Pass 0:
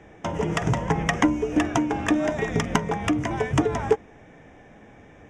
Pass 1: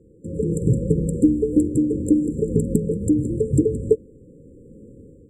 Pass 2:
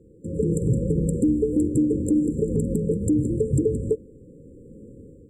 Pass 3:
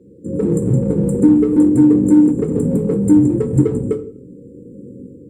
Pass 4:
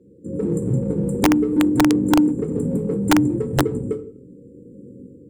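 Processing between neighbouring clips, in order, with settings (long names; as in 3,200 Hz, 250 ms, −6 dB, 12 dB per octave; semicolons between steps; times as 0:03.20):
brick-wall band-stop 550–7,200 Hz; automatic gain control gain up to 9 dB; level −2 dB
brickwall limiter −12.5 dBFS, peak gain reduction 8 dB
in parallel at −11 dB: gain into a clipping stage and back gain 23.5 dB; on the sum: convolution reverb RT60 0.45 s, pre-delay 3 ms, DRR 4 dB; level +1 dB
wrap-around overflow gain 3 dB; level −5.5 dB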